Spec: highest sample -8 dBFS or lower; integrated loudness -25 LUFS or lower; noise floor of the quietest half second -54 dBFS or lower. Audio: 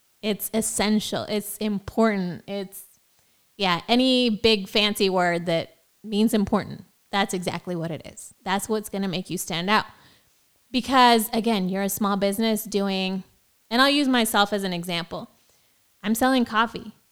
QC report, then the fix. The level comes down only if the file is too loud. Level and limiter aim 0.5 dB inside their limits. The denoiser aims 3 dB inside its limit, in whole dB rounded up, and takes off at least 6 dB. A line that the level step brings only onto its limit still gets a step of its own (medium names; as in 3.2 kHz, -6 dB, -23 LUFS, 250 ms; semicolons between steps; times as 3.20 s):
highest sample -4.0 dBFS: fail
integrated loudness -23.0 LUFS: fail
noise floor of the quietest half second -63 dBFS: pass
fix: trim -2.5 dB; peak limiter -8.5 dBFS